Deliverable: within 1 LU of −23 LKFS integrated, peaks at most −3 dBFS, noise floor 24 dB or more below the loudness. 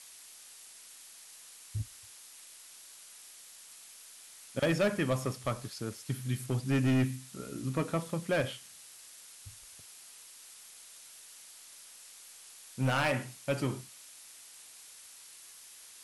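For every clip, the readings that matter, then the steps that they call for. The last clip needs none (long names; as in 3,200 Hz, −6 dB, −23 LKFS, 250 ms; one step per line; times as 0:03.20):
share of clipped samples 0.8%; peaks flattened at −23.0 dBFS; background noise floor −53 dBFS; target noise floor −57 dBFS; integrated loudness −33.0 LKFS; sample peak −23.0 dBFS; target loudness −23.0 LKFS
→ clipped peaks rebuilt −23 dBFS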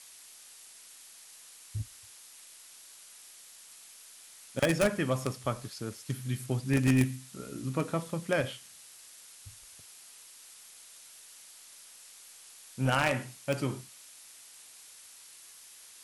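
share of clipped samples 0.0%; background noise floor −53 dBFS; target noise floor −56 dBFS
→ noise reduction from a noise print 6 dB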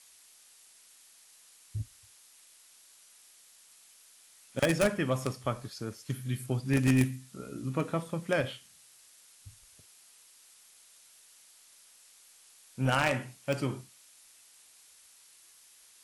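background noise floor −59 dBFS; integrated loudness −31.5 LKFS; sample peak −14.0 dBFS; target loudness −23.0 LKFS
→ level +8.5 dB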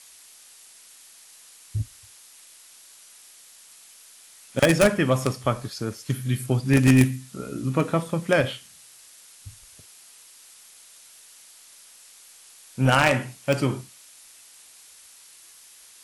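integrated loudness −23.0 LKFS; sample peak −5.5 dBFS; background noise floor −50 dBFS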